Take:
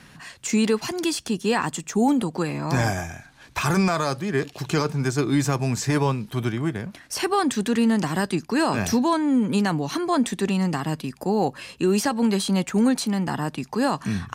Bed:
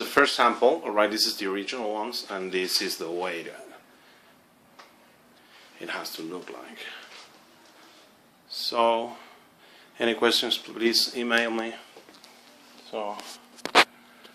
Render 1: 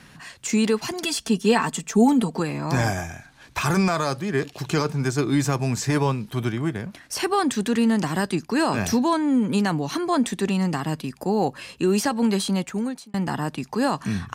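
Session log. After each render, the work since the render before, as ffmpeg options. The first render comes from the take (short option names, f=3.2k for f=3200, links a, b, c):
-filter_complex "[0:a]asettb=1/sr,asplit=3[a][b][c];[a]atrim=end=0.934[d];[b]atrim=start=0.93:end=2.4,asetpts=PTS-STARTPTS,afade=t=in:d=0.004:c=qsin,afade=t=out:st=1.466:d=0.004:c=qsin,aecho=1:1:4.5:0.69,atrim=end_sample=64827[e];[c]atrim=start=2.396[f];[d][e]acrossfade=d=0.004:c1=hsin:c2=qsin[g];[g][f]acrossfade=d=0.004:c1=qsin:c2=hsin,asplit=2[h][i];[h]atrim=end=13.14,asetpts=PTS-STARTPTS,afade=t=out:st=12.43:d=0.71[j];[i]atrim=start=13.14,asetpts=PTS-STARTPTS,afade=t=in:d=0.004:c=hsin[k];[j][k]concat=n=2:v=0:a=1"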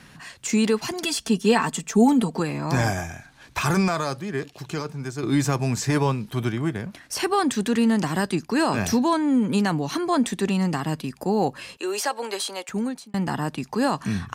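-filter_complex "[0:a]asettb=1/sr,asplit=3[a][b][c];[a]atrim=end=11.774[d];[b]atrim=start=11.77:end=12.69,asetpts=PTS-STARTPTS,afade=t=in:d=0.004:c=qsin,afade=t=out:st=0.916:d=0.004:c=qsin,highpass=f=430:w=0.5412,highpass=f=430:w=1.3066[e];[c]atrim=start=12.686[f];[d][e]acrossfade=d=0.004:c1=hsin:c2=qsin[g];[g][f]acrossfade=d=0.004:c1=qsin:c2=hsin,asplit=2[h][i];[h]atrim=end=5.23,asetpts=PTS-STARTPTS,afade=t=out:st=3.72:d=1.51:c=qua:silence=0.398107[j];[i]atrim=start=5.23,asetpts=PTS-STARTPTS,afade=t=in:d=0.004:c=hsin:silence=0.398107[k];[j][k]concat=n=2:v=0:a=1"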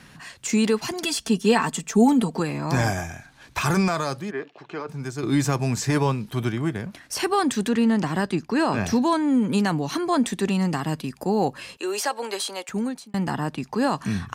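-filter_complex "[0:a]asplit=3[a][b][c];[a]afade=t=out:st=4.3:d=0.02[d];[b]highpass=320,lowpass=2.3k,afade=t=in:st=4.3:d=0.02,afade=t=out:st=4.87:d=0.02[e];[c]afade=t=in:st=4.87:d=0.02[f];[d][e][f]amix=inputs=3:normalize=0,asettb=1/sr,asplit=3[g][h][i];[g]atrim=end=7.694[j];[h]atrim=start=7.69:end=8.96,asetpts=PTS-STARTPTS,afade=t=in:d=0.004:c=qsin,afade=t=out:st=1.266:d=0.004:c=qsin,lowpass=f=3.9k:p=1[k];[i]atrim=start=8.956[l];[j][k]acrossfade=d=0.004:c1=hsin:c2=qsin[m];[m][l]acrossfade=d=0.004:c1=qsin:c2=hsin,asettb=1/sr,asplit=3[n][o][p];[n]atrim=end=13.314[q];[o]atrim=start=13.31:end=13.91,asetpts=PTS-STARTPTS,afade=t=in:d=0.004:c=qsin,afade=t=out:st=0.596:d=0.004:c=qsin,highshelf=f=5.8k:g=-5.5[r];[p]atrim=start=13.906[s];[q][r]acrossfade=d=0.004:c1=hsin:c2=qsin[t];[t][s]acrossfade=d=0.004:c1=qsin:c2=hsin"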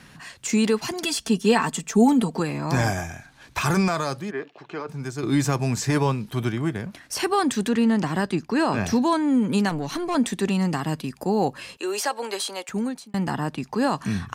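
-filter_complex "[0:a]asettb=1/sr,asplit=3[a][b][c];[a]atrim=end=9.694[d];[b]atrim=start=9.69:end=10.15,asetpts=PTS-STARTPTS,afade=t=in:d=0.004:c=qsin,afade=t=out:st=0.456:d=0.004:c=qsin,aeval=exprs='(tanh(10*val(0)+0.4)-tanh(0.4))/10':c=same[e];[c]atrim=start=10.146[f];[d][e]acrossfade=d=0.004:c1=hsin:c2=qsin[g];[g][f]acrossfade=d=0.004:c1=qsin:c2=hsin"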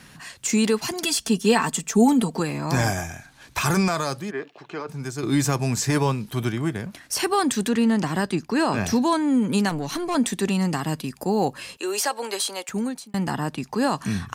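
-af "highshelf=f=5.8k:g=6.5"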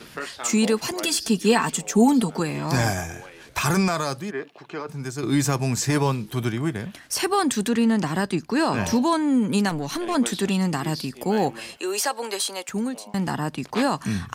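-filter_complex "[1:a]volume=-14dB[a];[0:a][a]amix=inputs=2:normalize=0"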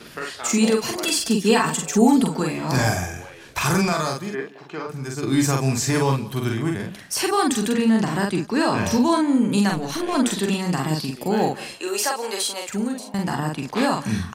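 -filter_complex "[0:a]asplit=2[a][b];[b]adelay=45,volume=-3dB[c];[a][c]amix=inputs=2:normalize=0,aecho=1:1:174:0.1"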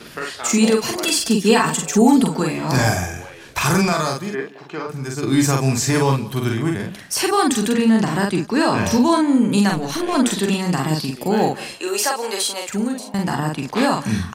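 -af "volume=3dB,alimiter=limit=-3dB:level=0:latency=1"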